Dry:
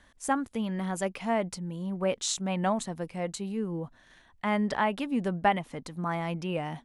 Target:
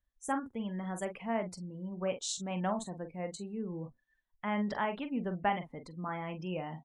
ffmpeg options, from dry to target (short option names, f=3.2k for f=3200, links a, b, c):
-filter_complex "[0:a]asplit=2[a][b];[b]adelay=44,volume=-8dB[c];[a][c]amix=inputs=2:normalize=0,afftdn=nr=27:nf=-44,volume=-6.5dB"